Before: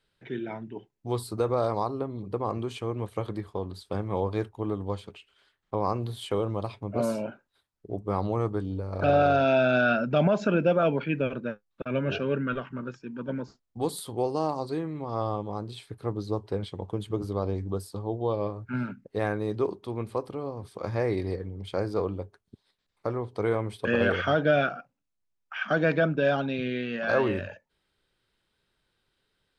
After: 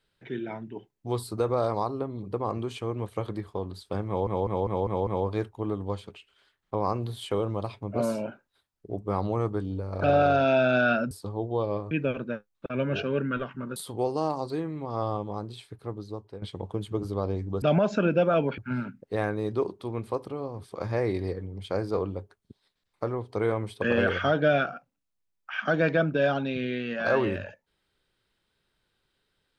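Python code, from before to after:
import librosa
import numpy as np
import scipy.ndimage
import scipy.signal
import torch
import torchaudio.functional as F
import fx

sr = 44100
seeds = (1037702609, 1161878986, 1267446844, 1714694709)

y = fx.edit(x, sr, fx.stutter(start_s=4.07, slice_s=0.2, count=6),
    fx.swap(start_s=10.11, length_s=0.96, other_s=17.81, other_length_s=0.8),
    fx.cut(start_s=12.92, length_s=1.03),
    fx.fade_out_to(start_s=15.51, length_s=1.1, floor_db=-13.0), tone=tone)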